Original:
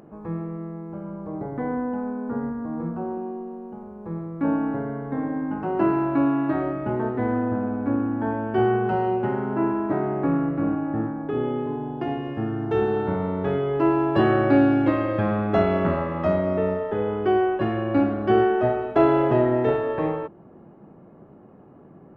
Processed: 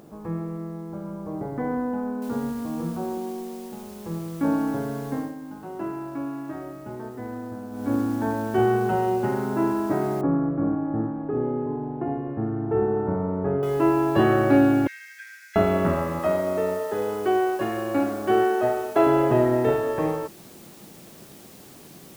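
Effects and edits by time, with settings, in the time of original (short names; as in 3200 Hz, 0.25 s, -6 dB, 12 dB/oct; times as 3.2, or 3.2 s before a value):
2.22 noise floor step -65 dB -50 dB
5.12–7.94 dip -10.5 dB, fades 0.23 s
10.21–13.63 Bessel low-pass 1100 Hz, order 4
14.87–15.56 rippled Chebyshev high-pass 1500 Hz, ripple 9 dB
16.19–19.07 tone controls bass -10 dB, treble +2 dB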